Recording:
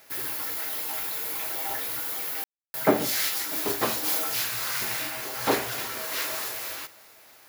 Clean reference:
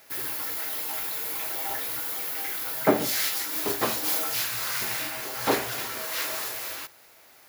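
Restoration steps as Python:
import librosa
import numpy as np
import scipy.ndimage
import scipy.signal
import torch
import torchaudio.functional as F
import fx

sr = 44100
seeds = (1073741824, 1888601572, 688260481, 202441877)

y = fx.fix_ambience(x, sr, seeds[0], print_start_s=6.97, print_end_s=7.47, start_s=2.44, end_s=2.74)
y = fx.fix_echo_inverse(y, sr, delay_ms=642, level_db=-24.0)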